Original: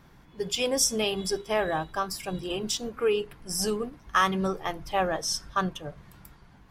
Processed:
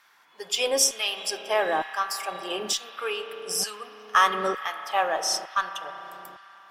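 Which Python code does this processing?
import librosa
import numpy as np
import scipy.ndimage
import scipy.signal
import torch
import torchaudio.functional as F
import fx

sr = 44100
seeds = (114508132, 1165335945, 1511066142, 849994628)

y = fx.rev_spring(x, sr, rt60_s=3.7, pass_ms=(33,), chirp_ms=60, drr_db=8.0)
y = fx.filter_lfo_highpass(y, sr, shape='saw_down', hz=1.1, low_hz=380.0, high_hz=1500.0, q=0.96)
y = fx.cheby_harmonics(y, sr, harmonics=(8,), levels_db=(-41,), full_scale_db=-10.5)
y = F.gain(torch.from_numpy(y), 3.0).numpy()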